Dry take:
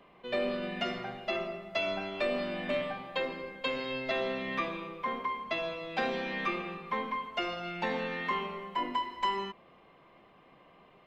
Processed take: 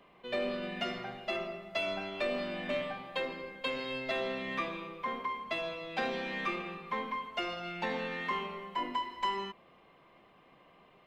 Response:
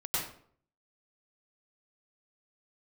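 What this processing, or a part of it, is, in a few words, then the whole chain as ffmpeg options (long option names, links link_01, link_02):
exciter from parts: -filter_complex "[0:a]asplit=2[link_01][link_02];[link_02]highpass=frequency=2600:poles=1,asoftclip=type=tanh:threshold=-39.5dB,volume=-7.5dB[link_03];[link_01][link_03]amix=inputs=2:normalize=0,volume=-2.5dB"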